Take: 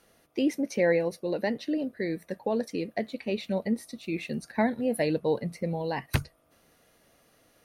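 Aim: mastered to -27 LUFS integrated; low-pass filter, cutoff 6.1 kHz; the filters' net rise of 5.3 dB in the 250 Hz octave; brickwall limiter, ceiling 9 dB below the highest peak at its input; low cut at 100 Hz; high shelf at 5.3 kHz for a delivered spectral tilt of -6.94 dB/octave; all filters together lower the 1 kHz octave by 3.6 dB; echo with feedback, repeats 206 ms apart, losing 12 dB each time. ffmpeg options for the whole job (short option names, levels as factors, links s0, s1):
-af "highpass=100,lowpass=6100,equalizer=f=250:t=o:g=7,equalizer=f=1000:t=o:g=-5.5,highshelf=f=5300:g=-6.5,alimiter=limit=0.1:level=0:latency=1,aecho=1:1:206|412|618:0.251|0.0628|0.0157,volume=1.5"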